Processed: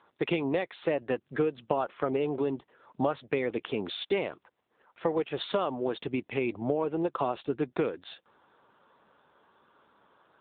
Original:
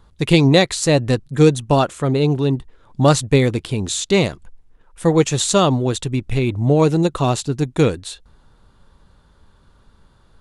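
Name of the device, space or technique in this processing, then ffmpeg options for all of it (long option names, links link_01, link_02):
voicemail: -filter_complex "[0:a]asettb=1/sr,asplit=3[link_01][link_02][link_03];[link_01]atrim=end=3.434[link_04];[link_02]atrim=start=3.43:end=4.12,asetpts=PTS-STARTPTS,afade=type=in:duration=0.004:curve=qsin,afade=type=out:start_time=0.686:duration=0.004:curve=qsin,highpass=57[link_05];[link_03]atrim=start=4.116[link_06];[link_04][link_05]acrossfade=duration=0.004:curve1=hsin:curve2=qsin[link_07];[link_07][link_06]acrossfade=duration=0.004:curve1=qsin:curve2=hsin,highpass=390,lowpass=2900,acompressor=threshold=-24dB:ratio=10" -ar 8000 -c:a libopencore_amrnb -b:a 7950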